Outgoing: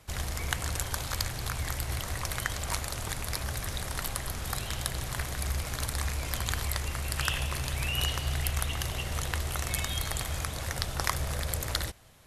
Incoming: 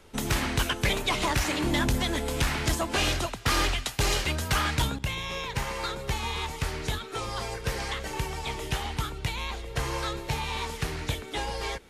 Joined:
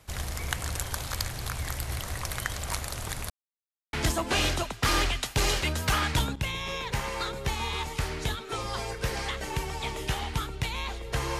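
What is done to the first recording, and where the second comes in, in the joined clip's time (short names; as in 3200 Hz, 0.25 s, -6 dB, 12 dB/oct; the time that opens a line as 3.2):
outgoing
3.3–3.93 mute
3.93 switch to incoming from 2.56 s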